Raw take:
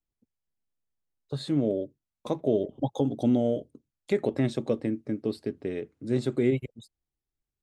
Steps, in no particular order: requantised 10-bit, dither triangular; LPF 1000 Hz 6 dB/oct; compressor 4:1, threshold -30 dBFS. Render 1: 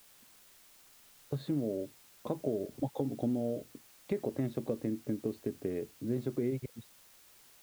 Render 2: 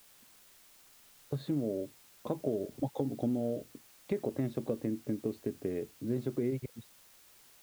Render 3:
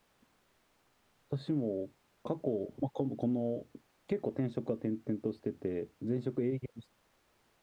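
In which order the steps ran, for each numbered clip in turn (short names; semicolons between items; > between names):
compressor > LPF > requantised; LPF > compressor > requantised; compressor > requantised > LPF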